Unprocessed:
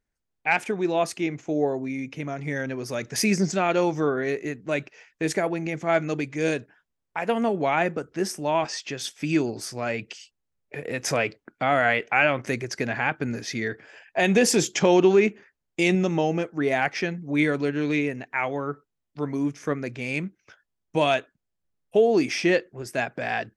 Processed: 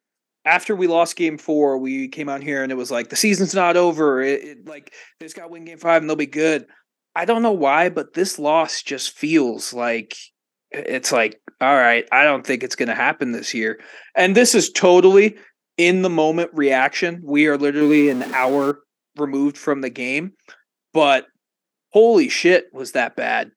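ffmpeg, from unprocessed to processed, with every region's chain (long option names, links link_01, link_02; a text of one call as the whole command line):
ffmpeg -i in.wav -filter_complex "[0:a]asettb=1/sr,asplit=3[link_01][link_02][link_03];[link_01]atrim=end=4.404[link_04];[link_02]atrim=start=4.4:end=5.85,asetpts=PTS-STARTPTS,afade=type=in:duration=0.004:curve=qsin,afade=type=out:start_time=1.446:duration=0.004:curve=qsin,highshelf=frequency=8900:gain=8.5,acompressor=threshold=-39dB:ratio=12:attack=3.2:release=140:knee=1:detection=peak,aeval=exprs='0.02*(abs(mod(val(0)/0.02+3,4)-2)-1)':channel_layout=same[link_05];[link_03]atrim=start=5.846[link_06];[link_04][link_05]acrossfade=duration=0.004:curve1=hsin:curve2=qsin[link_07];[link_07][link_06]acrossfade=duration=0.004:curve1=qsin:curve2=hsin,asettb=1/sr,asplit=3[link_08][link_09][link_10];[link_08]atrim=end=17.814[link_11];[link_09]atrim=start=17.81:end=18.71,asetpts=PTS-STARTPTS,afade=type=in:duration=0.004:curve=qsin,afade=type=out:start_time=0.896:duration=0.004:curve=qsin,aeval=exprs='val(0)+0.5*0.0237*sgn(val(0))':channel_layout=same,tiltshelf=frequency=930:gain=4[link_12];[link_10]atrim=start=18.706[link_13];[link_11][link_12]acrossfade=duration=0.004:curve1=hsin:curve2=qsin[link_14];[link_14][link_13]acrossfade=duration=0.004:curve1=qsin:curve2=hsin,highpass=frequency=210:width=0.5412,highpass=frequency=210:width=1.3066,dynaudnorm=framelen=120:gausssize=3:maxgain=4.5dB,volume=3dB" out.wav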